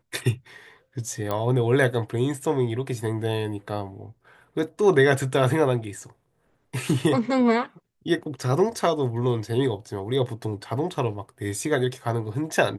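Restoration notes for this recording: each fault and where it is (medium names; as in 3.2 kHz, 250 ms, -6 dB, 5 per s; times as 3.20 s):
1.31 s: pop -14 dBFS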